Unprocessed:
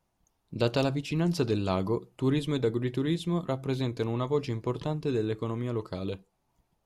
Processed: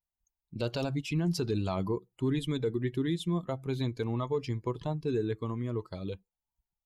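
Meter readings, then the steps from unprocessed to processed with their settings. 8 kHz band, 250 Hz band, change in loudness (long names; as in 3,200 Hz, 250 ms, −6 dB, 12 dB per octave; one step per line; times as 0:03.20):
−1.0 dB, −2.5 dB, −3.0 dB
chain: spectral dynamics exaggerated over time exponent 1.5
in parallel at −10.5 dB: gain into a clipping stage and back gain 21 dB
on the sum: brickwall limiter −22 dBFS, peak gain reduction 8.5 dB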